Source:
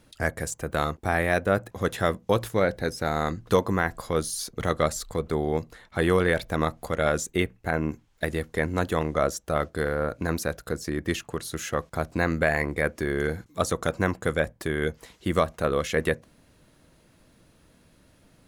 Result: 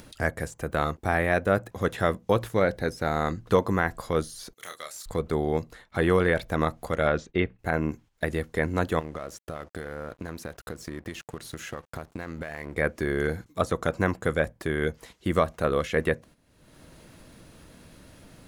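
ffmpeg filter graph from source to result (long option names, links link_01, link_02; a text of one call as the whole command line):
ffmpeg -i in.wav -filter_complex "[0:a]asettb=1/sr,asplit=3[link_01][link_02][link_03];[link_01]atrim=end=4.534[link_04];[link_02]atrim=start=4.53:end=5.06,asetpts=PTS-STARTPTS,afade=type=in:duration=0.004:curve=qsin,afade=type=out:start_time=0.526:duration=0.004:curve=qsin,aderivative,asoftclip=type=hard:threshold=-27.5dB,asplit=2[link_05][link_06];[link_06]adelay=28,volume=-6dB[link_07];[link_05][link_07]amix=inputs=2:normalize=0,atrim=end_sample=23373[link_08];[link_03]atrim=start=5.056[link_09];[link_04][link_08]acrossfade=duration=0.004:curve1=hsin:curve2=qsin[link_10];[link_10][link_09]acrossfade=duration=0.004:curve1=qsin:curve2=hsin,asettb=1/sr,asplit=3[link_11][link_12][link_13];[link_11]atrim=end=7.074[link_14];[link_12]atrim=start=7.07:end=7.59,asetpts=PTS-STARTPTS,afade=type=in:duration=0.004:curve=qsin,afade=type=out:start_time=0.516:duration=0.004:curve=qsin,lowpass=frequency=4200:width=0.5412,lowpass=frequency=4200:width=1.3066,agate=range=-33dB:threshold=-52dB:ratio=3:release=100:detection=peak[link_15];[link_13]atrim=start=7.586[link_16];[link_14][link_15]acrossfade=duration=0.004:curve1=hsin:curve2=qsin[link_17];[link_17][link_16]acrossfade=duration=0.004:curve1=qsin:curve2=hsin,asettb=1/sr,asplit=3[link_18][link_19][link_20];[link_18]atrim=end=8.994[link_21];[link_19]atrim=start=8.99:end=12.77,asetpts=PTS-STARTPTS,afade=type=in:duration=0.004:curve=qsin,afade=type=out:start_time=3.776:duration=0.004:curve=qsin,acompressor=threshold=-30dB:ratio=10:attack=3.2:release=140:knee=1:detection=peak,aeval=exprs='sgn(val(0))*max(abs(val(0))-0.00316,0)':channel_layout=same[link_22];[link_20]atrim=start=12.766[link_23];[link_21][link_22]acrossfade=duration=0.004:curve1=hsin:curve2=qsin[link_24];[link_24][link_23]acrossfade=duration=0.004:curve1=qsin:curve2=hsin,acrossover=split=3100[link_25][link_26];[link_26]acompressor=threshold=-42dB:ratio=4:attack=1:release=60[link_27];[link_25][link_27]amix=inputs=2:normalize=0,agate=range=-10dB:threshold=-48dB:ratio=16:detection=peak,acompressor=mode=upward:threshold=-34dB:ratio=2.5" out.wav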